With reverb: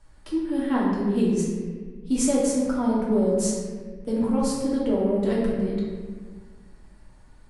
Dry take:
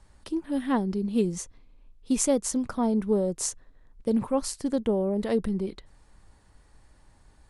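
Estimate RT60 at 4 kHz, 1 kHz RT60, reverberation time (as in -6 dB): 1.0 s, 1.3 s, 1.5 s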